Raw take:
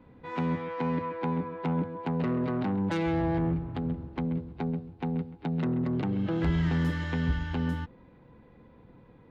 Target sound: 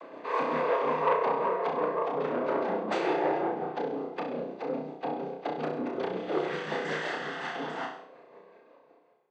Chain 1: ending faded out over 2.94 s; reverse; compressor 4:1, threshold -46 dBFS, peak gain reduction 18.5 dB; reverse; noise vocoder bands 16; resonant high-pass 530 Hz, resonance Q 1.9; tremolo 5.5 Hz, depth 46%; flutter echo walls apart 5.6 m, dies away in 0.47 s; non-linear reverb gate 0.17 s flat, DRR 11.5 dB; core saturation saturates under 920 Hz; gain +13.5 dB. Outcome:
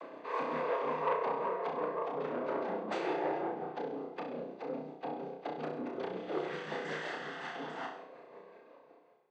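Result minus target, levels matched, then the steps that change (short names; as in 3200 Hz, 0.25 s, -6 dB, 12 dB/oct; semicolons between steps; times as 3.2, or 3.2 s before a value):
compressor: peak gain reduction +6.5 dB
change: compressor 4:1, threshold -37.5 dBFS, peak gain reduction 12 dB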